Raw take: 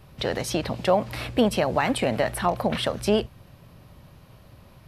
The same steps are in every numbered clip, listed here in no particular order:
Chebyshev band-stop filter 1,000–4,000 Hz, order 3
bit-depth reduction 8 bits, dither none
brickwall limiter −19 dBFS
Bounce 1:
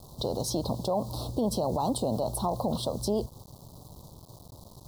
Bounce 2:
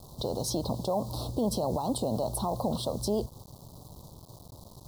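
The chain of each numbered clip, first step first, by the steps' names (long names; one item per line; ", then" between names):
bit-depth reduction, then Chebyshev band-stop filter, then brickwall limiter
brickwall limiter, then bit-depth reduction, then Chebyshev band-stop filter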